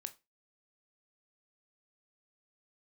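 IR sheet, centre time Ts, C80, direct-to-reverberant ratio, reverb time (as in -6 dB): 4 ms, 26.5 dB, 9.0 dB, 0.25 s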